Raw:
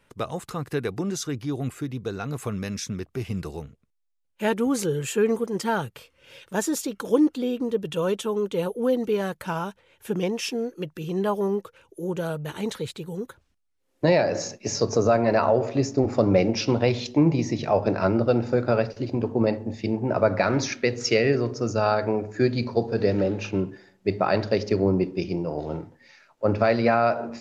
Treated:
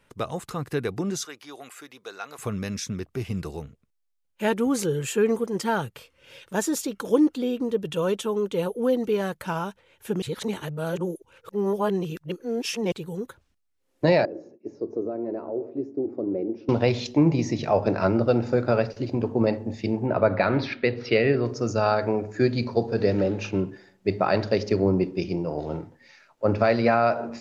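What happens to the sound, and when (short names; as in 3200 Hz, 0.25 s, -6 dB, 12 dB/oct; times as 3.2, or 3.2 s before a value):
1.25–2.39 HPF 750 Hz
10.22–12.92 reverse
14.25–16.69 band-pass 340 Hz, Q 4.2
20.06–21.45 steep low-pass 4400 Hz 48 dB/oct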